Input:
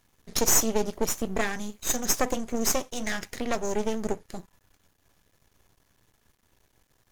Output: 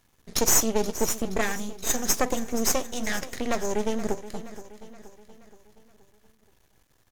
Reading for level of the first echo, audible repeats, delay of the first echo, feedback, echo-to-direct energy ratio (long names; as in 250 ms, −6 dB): −14.5 dB, 4, 474 ms, 51%, −13.0 dB